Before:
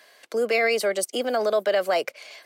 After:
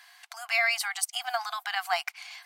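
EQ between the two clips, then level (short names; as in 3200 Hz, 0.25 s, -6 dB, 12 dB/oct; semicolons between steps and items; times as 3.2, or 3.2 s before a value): brick-wall FIR high-pass 690 Hz; 0.0 dB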